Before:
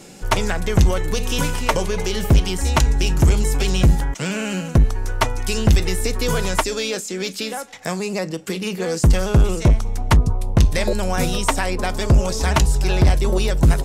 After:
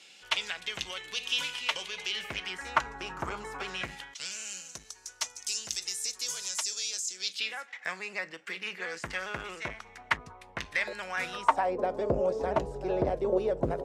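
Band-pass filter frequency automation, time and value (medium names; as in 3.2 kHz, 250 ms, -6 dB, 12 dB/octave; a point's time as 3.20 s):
band-pass filter, Q 2.3
2.01 s 3.1 kHz
2.89 s 1.2 kHz
3.61 s 1.2 kHz
4.36 s 6.2 kHz
7.13 s 6.2 kHz
7.58 s 1.9 kHz
11.23 s 1.9 kHz
11.78 s 520 Hz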